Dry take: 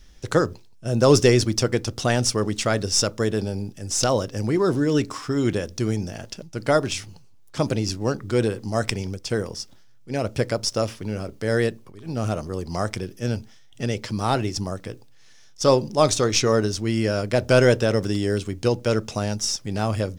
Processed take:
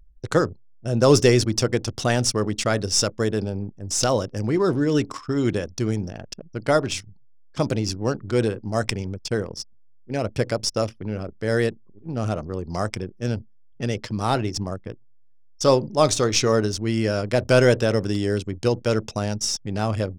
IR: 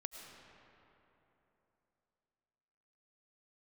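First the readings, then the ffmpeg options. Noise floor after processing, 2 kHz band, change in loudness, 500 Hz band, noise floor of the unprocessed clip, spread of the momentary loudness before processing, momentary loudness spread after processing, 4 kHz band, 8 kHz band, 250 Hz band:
-48 dBFS, 0.0 dB, 0.0 dB, 0.0 dB, -48 dBFS, 12 LU, 12 LU, 0.0 dB, 0.0 dB, 0.0 dB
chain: -af "anlmdn=6.31"

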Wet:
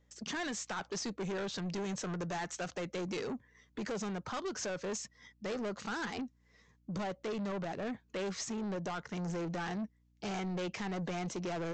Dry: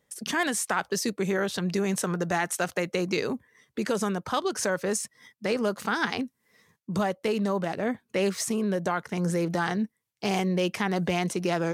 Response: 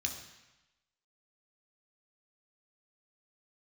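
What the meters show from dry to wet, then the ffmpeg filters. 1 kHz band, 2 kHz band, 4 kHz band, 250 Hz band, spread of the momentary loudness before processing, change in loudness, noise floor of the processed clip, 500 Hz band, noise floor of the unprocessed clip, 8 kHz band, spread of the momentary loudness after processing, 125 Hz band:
-10.5 dB, -11.5 dB, -9.0 dB, -10.0 dB, 7 LU, -10.5 dB, -69 dBFS, -11.0 dB, -77 dBFS, -10.5 dB, 5 LU, -9.5 dB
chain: -af "aresample=16000,asoftclip=type=tanh:threshold=0.0335,aresample=44100,aeval=exprs='val(0)+0.000631*(sin(2*PI*60*n/s)+sin(2*PI*2*60*n/s)/2+sin(2*PI*3*60*n/s)/3+sin(2*PI*4*60*n/s)/4+sin(2*PI*5*60*n/s)/5)':c=same,volume=0.596"

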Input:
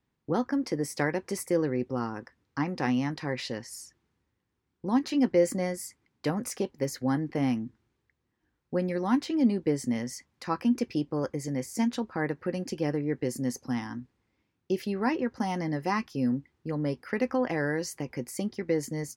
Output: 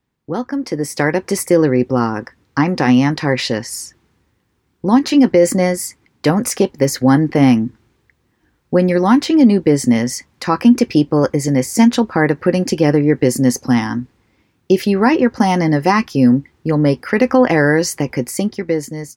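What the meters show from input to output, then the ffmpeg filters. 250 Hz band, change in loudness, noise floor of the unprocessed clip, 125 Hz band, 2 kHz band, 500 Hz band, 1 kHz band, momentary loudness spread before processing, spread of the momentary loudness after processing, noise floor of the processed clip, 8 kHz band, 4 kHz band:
+15.0 dB, +15.0 dB, -79 dBFS, +15.5 dB, +15.0 dB, +14.5 dB, +15.0 dB, 9 LU, 10 LU, -64 dBFS, +15.5 dB, +15.5 dB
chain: -af "dynaudnorm=f=270:g=7:m=3.76,alimiter=level_in=2.11:limit=0.891:release=50:level=0:latency=1,volume=0.891"

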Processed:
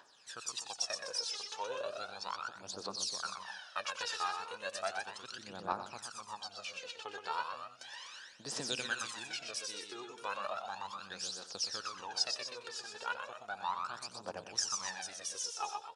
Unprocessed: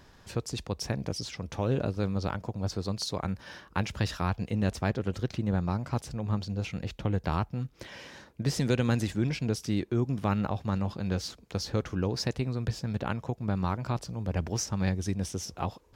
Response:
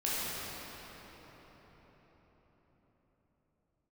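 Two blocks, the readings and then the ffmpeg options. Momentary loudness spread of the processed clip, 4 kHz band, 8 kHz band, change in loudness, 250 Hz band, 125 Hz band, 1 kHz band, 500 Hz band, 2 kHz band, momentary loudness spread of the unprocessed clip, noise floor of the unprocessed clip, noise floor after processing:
9 LU, +1.0 dB, +1.0 dB, -8.0 dB, -24.5 dB, -32.5 dB, -2.0 dB, -10.5 dB, -1.0 dB, 7 LU, -57 dBFS, -56 dBFS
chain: -filter_complex "[0:a]highpass=1000,asplit=2[s0][s1];[s1]aecho=0:1:122|250:0.531|0.299[s2];[s0][s2]amix=inputs=2:normalize=0,aphaser=in_gain=1:out_gain=1:delay=2.5:decay=0.74:speed=0.35:type=triangular,equalizer=f=2100:w=4.7:g=-10.5,aresample=22050,aresample=44100,asplit=2[s3][s4];[s4]aecho=0:1:91:0.211[s5];[s3][s5]amix=inputs=2:normalize=0,volume=0.668"

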